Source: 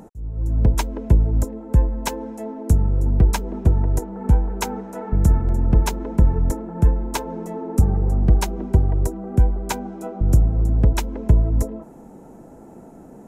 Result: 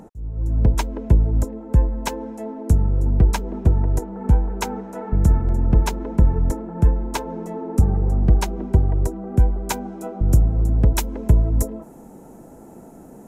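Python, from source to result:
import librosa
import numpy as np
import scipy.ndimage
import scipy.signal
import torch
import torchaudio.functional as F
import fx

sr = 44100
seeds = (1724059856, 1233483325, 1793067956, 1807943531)

y = fx.high_shelf(x, sr, hz=7200.0, db=fx.steps((0.0, -4.5), (9.37, 4.0), (10.84, 10.5)))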